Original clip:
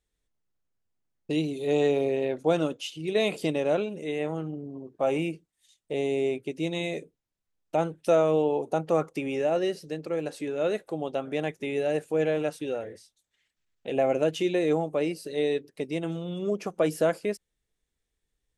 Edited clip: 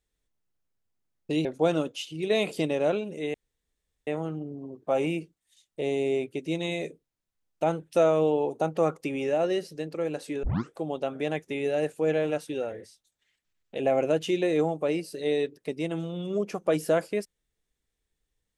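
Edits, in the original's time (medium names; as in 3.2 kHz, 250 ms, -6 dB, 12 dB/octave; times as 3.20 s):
1.45–2.30 s: delete
4.19 s: insert room tone 0.73 s
10.55 s: tape start 0.32 s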